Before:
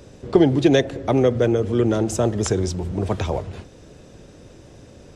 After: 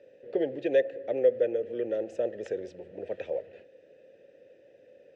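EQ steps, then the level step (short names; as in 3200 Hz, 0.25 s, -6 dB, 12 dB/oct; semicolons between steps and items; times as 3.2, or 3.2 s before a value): vowel filter e; low shelf 76 Hz -7 dB; high shelf 4300 Hz -6 dB; 0.0 dB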